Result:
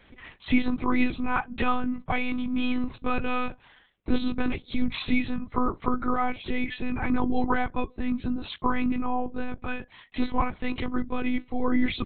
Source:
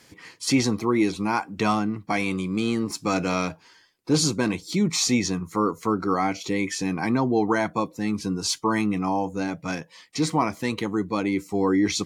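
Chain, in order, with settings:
one-pitch LPC vocoder at 8 kHz 250 Hz
dynamic equaliser 530 Hz, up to −4 dB, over −38 dBFS, Q 1.2

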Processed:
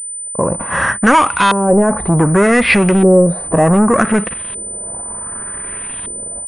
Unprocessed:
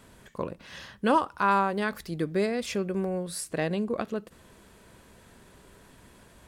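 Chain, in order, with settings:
hearing-aid frequency compression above 3,300 Hz 1.5 to 1
noise gate −46 dBFS, range −8 dB
dynamic equaliser 450 Hz, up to −4 dB, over −39 dBFS, Q 1.3
harmonic and percussive parts rebalanced percussive −5 dB
parametric band 1,600 Hz +3.5 dB 2.4 octaves
in parallel at +3 dB: downward compressor, threshold −37 dBFS, peak gain reduction 18.5 dB
on the sum: brickwall limiter −18 dBFS, peak gain reduction 8.5 dB
automatic gain control gain up to 13.5 dB
leveller curve on the samples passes 3
auto-filter low-pass saw up 0.66 Hz 440–3,400 Hz
switching amplifier with a slow clock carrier 9,000 Hz
level −2.5 dB

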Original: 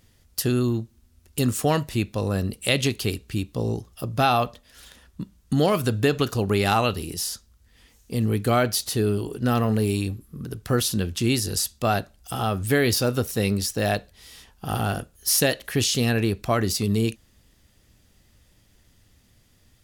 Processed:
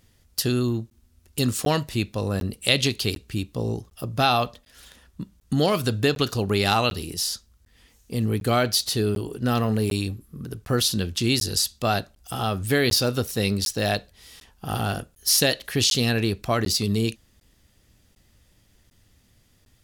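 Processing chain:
dynamic equaliser 4,200 Hz, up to +7 dB, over −42 dBFS, Q 1.3
regular buffer underruns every 0.75 s, samples 512, zero, from 0:00.90
level −1 dB

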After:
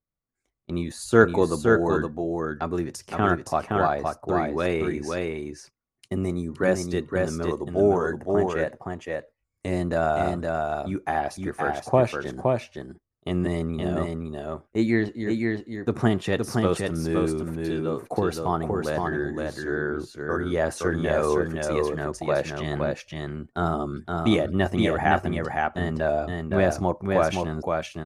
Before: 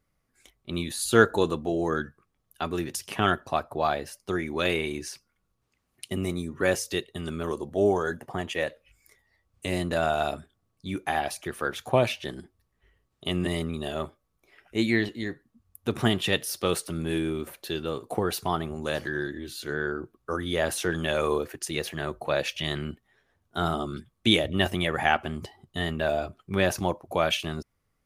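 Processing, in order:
noise gate −43 dBFS, range −18 dB
low-pass filter 6,400 Hz 12 dB per octave
parametric band 3,200 Hz −14 dB 1.1 octaves
on a send: single-tap delay 517 ms −3.5 dB
on the sum: level +3 dB

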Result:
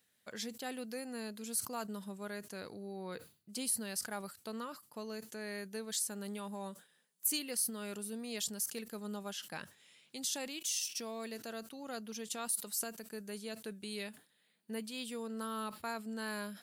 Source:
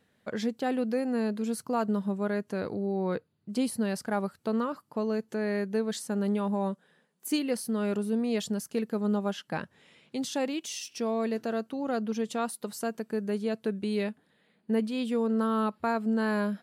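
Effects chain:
first-order pre-emphasis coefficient 0.9
level that may fall only so fast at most 150 dB per second
level +4.5 dB

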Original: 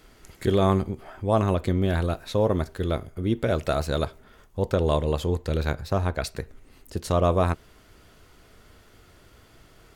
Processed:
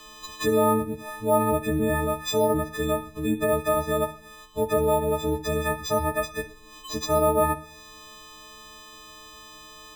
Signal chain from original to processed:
every partial snapped to a pitch grid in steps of 6 semitones
treble cut that deepens with the level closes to 1,600 Hz, closed at −19 dBFS
parametric band 100 Hz −14.5 dB 0.43 octaves
in parallel at −2 dB: brickwall limiter −19.5 dBFS, peak gain reduction 10.5 dB
on the sum: decimation without filtering 4×
on a send at −14 dB: convolution reverb RT60 0.55 s, pre-delay 45 ms
on the sum: level −3.5 dB

